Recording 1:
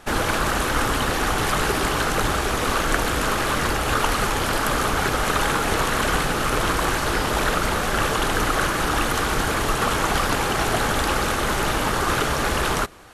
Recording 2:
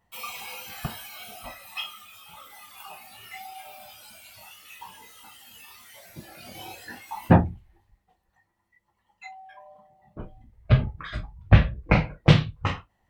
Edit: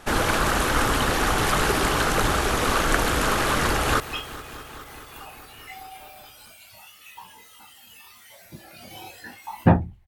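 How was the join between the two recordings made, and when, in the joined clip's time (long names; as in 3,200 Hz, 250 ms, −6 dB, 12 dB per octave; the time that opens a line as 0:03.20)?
recording 1
0:03.59–0:04.00: delay throw 210 ms, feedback 80%, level −15.5 dB
0:04.00: continue with recording 2 from 0:01.64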